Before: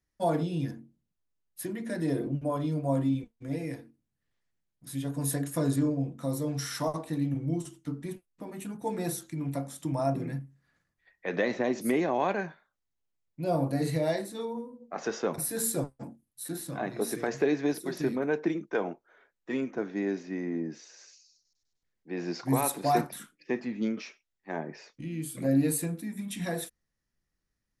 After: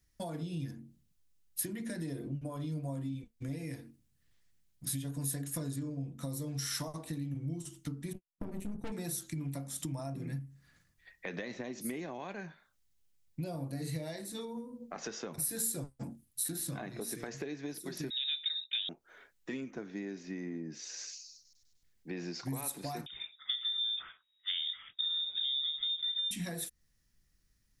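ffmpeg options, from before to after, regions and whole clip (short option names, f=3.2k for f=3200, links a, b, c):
-filter_complex "[0:a]asettb=1/sr,asplit=3[a][b][c];[a]atrim=end=8.134[d];[b]atrim=start=8.13:end=8.92,asetpts=PTS-STARTPTS,afade=t=in:d=0.004:c=qsin,afade=t=out:st=0.786:d=0.004:c=qsin,agate=range=-33dB:threshold=-45dB:ratio=3:release=100:detection=peak,tiltshelf=f=1.2k:g=7.5,aeval=exprs='(tanh(39.8*val(0)+0.75)-tanh(0.75))/39.8':c=same[e];[c]atrim=start=8.916[f];[d][e]acrossfade=d=0.004:c1=hsin:c2=qsin[g];[g][f]acrossfade=d=0.004:c1=qsin:c2=hsin,asettb=1/sr,asplit=3[h][i][j];[h]atrim=end=18.104[k];[i]atrim=start=18.1:end=18.89,asetpts=PTS-STARTPTS,afade=t=in:d=0.004:c=qsin,afade=t=out:st=0.786:d=0.004:c=qsin,asoftclip=type=hard:threshold=-20dB,lowpass=f=3.4k:t=q:w=0.5098,lowpass=f=3.4k:t=q:w=0.6013,lowpass=f=3.4k:t=q:w=0.9,lowpass=f=3.4k:t=q:w=2.563,afreqshift=-4000[l];[j]atrim=start=18.886[m];[k][l]acrossfade=d=0.004:c1=hsin:c2=qsin[n];[n][m]acrossfade=d=0.004:c1=qsin:c2=hsin,asettb=1/sr,asplit=3[o][p][q];[o]atrim=end=23.064[r];[p]atrim=start=23.06:end=26.31,asetpts=PTS-STARTPTS,afade=t=in:d=0.004:c=qsin,afade=t=out:st=3.246:d=0.004:c=qsin,equalizer=f=130:w=0.52:g=11,acompressor=threshold=-28dB:ratio=2.5:attack=3.2:release=140:knee=1:detection=peak,lowpass=f=3.2k:t=q:w=0.5098,lowpass=f=3.2k:t=q:w=0.6013,lowpass=f=3.2k:t=q:w=0.9,lowpass=f=3.2k:t=q:w=2.563,afreqshift=-3800[s];[q]atrim=start=26.306[t];[r][s]acrossfade=d=0.004:c1=hsin:c2=qsin[u];[u][t]acrossfade=d=0.004:c1=qsin:c2=hsin,acompressor=threshold=-43dB:ratio=5,equalizer=f=660:w=0.33:g=-10.5,volume=11.5dB"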